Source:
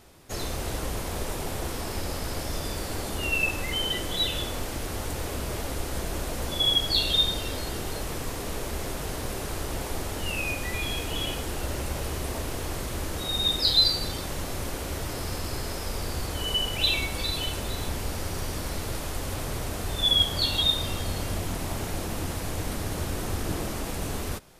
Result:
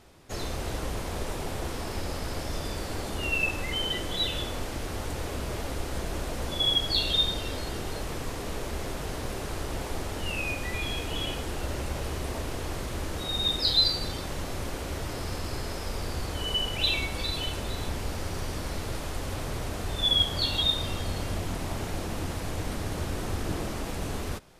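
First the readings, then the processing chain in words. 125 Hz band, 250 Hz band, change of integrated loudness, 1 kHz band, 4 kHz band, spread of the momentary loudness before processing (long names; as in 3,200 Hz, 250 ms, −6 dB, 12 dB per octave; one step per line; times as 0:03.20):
−1.0 dB, −1.0 dB, −2.0 dB, −1.0 dB, −2.0 dB, 11 LU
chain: high-shelf EQ 9,200 Hz −9.5 dB
level −1 dB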